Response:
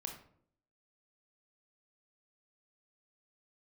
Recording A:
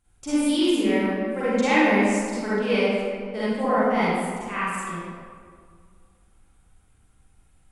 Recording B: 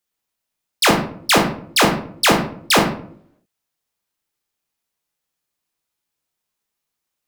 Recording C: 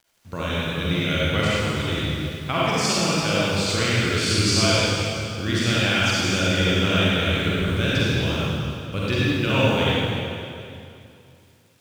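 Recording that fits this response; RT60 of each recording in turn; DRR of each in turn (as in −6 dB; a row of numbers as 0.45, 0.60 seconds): B; 2.0, 0.60, 2.6 seconds; −12.5, 2.5, −8.5 decibels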